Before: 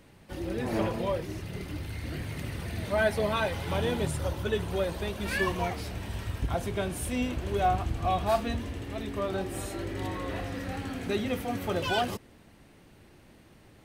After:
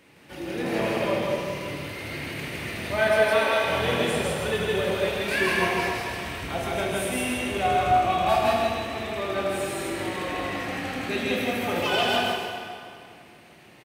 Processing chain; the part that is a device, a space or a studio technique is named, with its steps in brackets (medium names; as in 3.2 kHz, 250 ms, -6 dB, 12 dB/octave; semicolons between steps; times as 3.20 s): 3.17–3.64 s: Chebyshev high-pass 240 Hz, order 10; stadium PA (high-pass 240 Hz 6 dB/octave; peaking EQ 2.4 kHz +6.5 dB 0.86 oct; loudspeakers at several distances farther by 55 m -1 dB, 98 m -9 dB; reverberation RT60 2.3 s, pre-delay 16 ms, DRR -0.5 dB)